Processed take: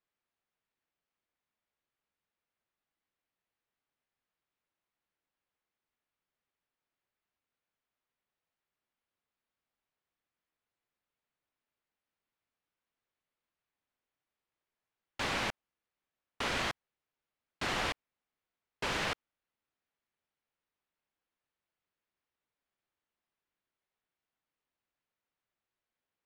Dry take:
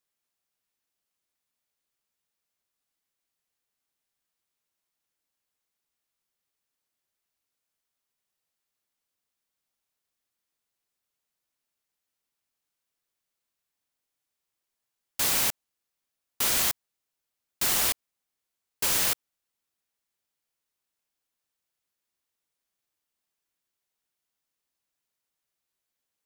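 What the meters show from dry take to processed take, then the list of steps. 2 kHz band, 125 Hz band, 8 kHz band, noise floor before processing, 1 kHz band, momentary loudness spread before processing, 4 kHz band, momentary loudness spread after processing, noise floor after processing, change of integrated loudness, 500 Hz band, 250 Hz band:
-1.5 dB, 0.0 dB, -19.5 dB, -85 dBFS, 0.0 dB, 10 LU, -7.5 dB, 12 LU, under -85 dBFS, -10.5 dB, 0.0 dB, 0.0 dB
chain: low-pass 2.6 kHz 12 dB/octave

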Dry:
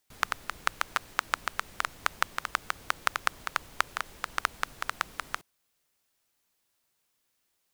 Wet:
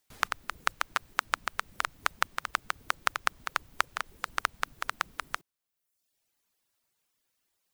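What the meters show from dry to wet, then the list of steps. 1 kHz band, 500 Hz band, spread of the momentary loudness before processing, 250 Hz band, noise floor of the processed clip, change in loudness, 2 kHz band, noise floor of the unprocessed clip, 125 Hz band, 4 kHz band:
0.0 dB, -0.5 dB, 5 LU, -2.0 dB, -83 dBFS, -0.5 dB, 0.0 dB, -77 dBFS, -2.5 dB, -0.5 dB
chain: reverb removal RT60 0.95 s

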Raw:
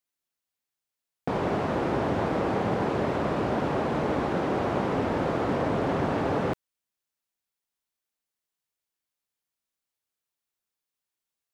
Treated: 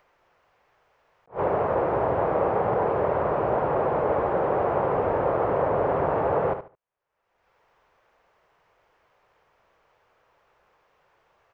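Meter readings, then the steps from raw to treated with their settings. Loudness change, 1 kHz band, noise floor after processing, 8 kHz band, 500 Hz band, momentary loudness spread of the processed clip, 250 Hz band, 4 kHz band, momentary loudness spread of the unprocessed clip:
+3.0 dB, +4.5 dB, -73 dBFS, no reading, +5.0 dB, 2 LU, -5.0 dB, under -10 dB, 2 LU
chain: graphic EQ 250/500/1000/4000/8000 Hz -11/+8/+5/-11/-11 dB; upward compressor, threshold -36 dBFS; distance through air 170 m; feedback delay 72 ms, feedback 23%, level -9.5 dB; attacks held to a fixed rise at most 310 dB/s

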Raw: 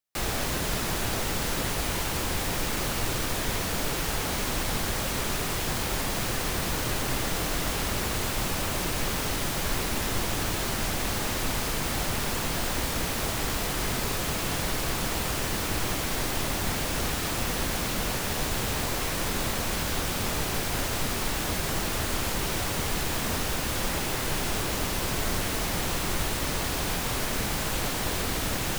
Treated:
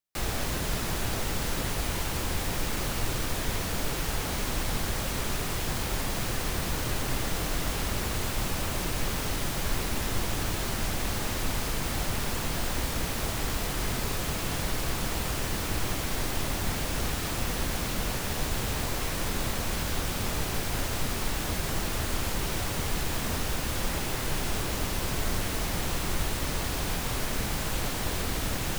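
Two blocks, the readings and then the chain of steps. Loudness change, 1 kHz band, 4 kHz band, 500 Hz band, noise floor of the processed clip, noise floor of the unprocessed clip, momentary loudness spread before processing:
-2.5 dB, -3.0 dB, -3.0 dB, -2.5 dB, -32 dBFS, -30 dBFS, 0 LU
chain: bass shelf 130 Hz +5 dB; trim -3 dB

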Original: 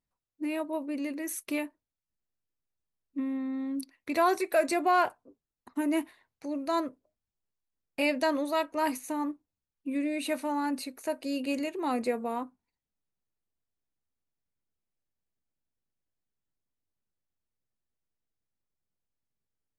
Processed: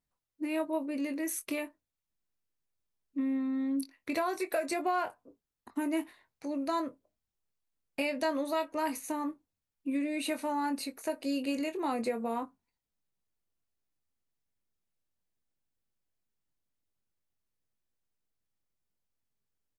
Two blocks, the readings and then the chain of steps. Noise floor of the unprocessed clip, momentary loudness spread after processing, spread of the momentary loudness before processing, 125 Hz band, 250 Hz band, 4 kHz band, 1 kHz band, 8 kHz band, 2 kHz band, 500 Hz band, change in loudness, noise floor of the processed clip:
under -85 dBFS, 9 LU, 11 LU, no reading, -1.5 dB, -2.5 dB, -4.5 dB, -0.5 dB, -4.0 dB, -3.5 dB, -3.0 dB, under -85 dBFS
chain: compression 10:1, threshold -28 dBFS, peak gain reduction 9.5 dB; doubling 22 ms -9 dB

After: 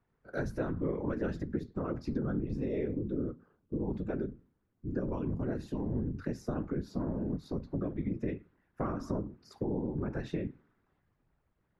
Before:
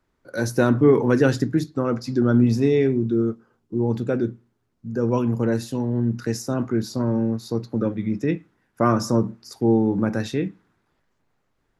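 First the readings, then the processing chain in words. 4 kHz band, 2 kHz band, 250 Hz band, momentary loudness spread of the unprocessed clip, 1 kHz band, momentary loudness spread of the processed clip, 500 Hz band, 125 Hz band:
under -15 dB, -15.5 dB, -13.5 dB, 10 LU, -15.5 dB, 5 LU, -15.0 dB, -13.0 dB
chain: tone controls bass +3 dB, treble -15 dB; compression 6:1, threshold -24 dBFS, peak gain reduction 13.5 dB; whisper effect; trim -6.5 dB

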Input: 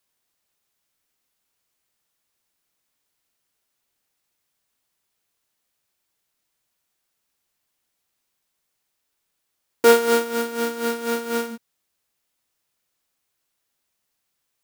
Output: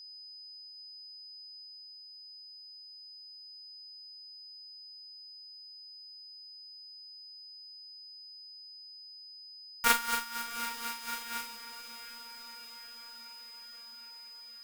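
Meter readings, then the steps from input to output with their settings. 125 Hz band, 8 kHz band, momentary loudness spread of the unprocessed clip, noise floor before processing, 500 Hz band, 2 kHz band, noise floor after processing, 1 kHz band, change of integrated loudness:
no reading, -5.0 dB, 11 LU, -77 dBFS, -29.5 dB, -6.0 dB, -51 dBFS, -7.5 dB, -18.5 dB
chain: whistle 5 kHz -39 dBFS; elliptic band-stop 170–1000 Hz, stop band 40 dB; Chebyshev shaper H 2 -11 dB, 3 -12 dB, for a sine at -4 dBFS; on a send: echo that smears into a reverb 754 ms, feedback 66%, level -13.5 dB; on the sum: trim +5 dB

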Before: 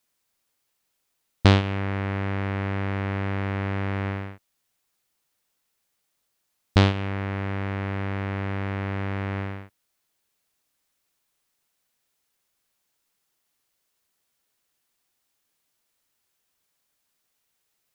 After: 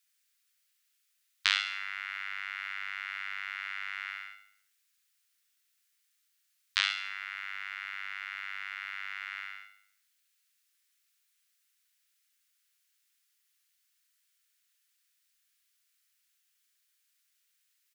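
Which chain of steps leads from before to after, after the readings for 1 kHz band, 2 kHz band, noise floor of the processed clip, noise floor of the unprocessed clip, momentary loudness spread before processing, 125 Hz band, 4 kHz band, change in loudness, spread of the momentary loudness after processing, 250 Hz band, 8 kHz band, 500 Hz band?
-10.5 dB, -0.5 dB, -76 dBFS, -76 dBFS, 9 LU, under -40 dB, +0.5 dB, -8.0 dB, 10 LU, under -40 dB, no reading, under -40 dB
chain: inverse Chebyshev high-pass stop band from 580 Hz, stop band 50 dB; feedback delay 70 ms, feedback 49%, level -8.5 dB

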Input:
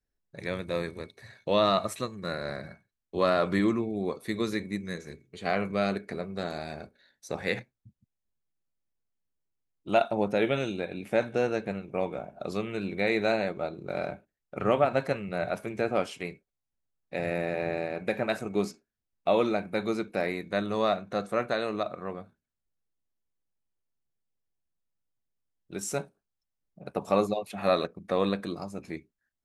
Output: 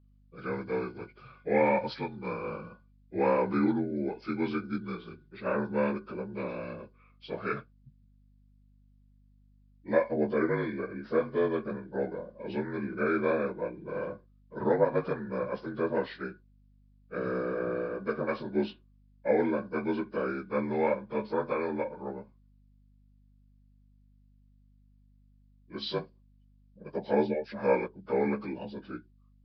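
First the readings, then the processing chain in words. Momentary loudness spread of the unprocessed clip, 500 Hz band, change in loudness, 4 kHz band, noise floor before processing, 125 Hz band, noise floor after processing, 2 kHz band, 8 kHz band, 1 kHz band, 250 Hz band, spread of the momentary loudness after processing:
14 LU, -1.0 dB, -1.5 dB, -9.0 dB, -85 dBFS, -2.5 dB, -62 dBFS, -3.0 dB, no reading, -3.0 dB, -0.5 dB, 14 LU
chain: frequency axis rescaled in octaves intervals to 81%; hum 50 Hz, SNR 29 dB; resampled via 11.025 kHz

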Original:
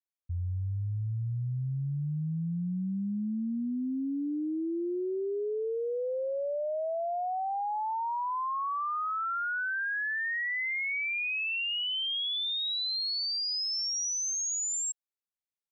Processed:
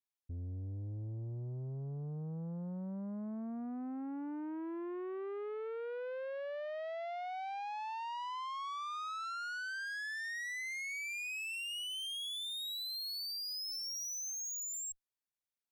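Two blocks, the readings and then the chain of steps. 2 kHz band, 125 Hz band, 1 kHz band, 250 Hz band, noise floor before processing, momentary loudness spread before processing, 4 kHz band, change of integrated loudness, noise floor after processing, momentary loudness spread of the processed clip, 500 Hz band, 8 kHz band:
-9.0 dB, -9.5 dB, -9.0 dB, -9.0 dB, under -85 dBFS, 5 LU, -9.0 dB, -9.0 dB, under -85 dBFS, 5 LU, -9.0 dB, no reading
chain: valve stage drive 37 dB, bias 0.3; trim -2.5 dB

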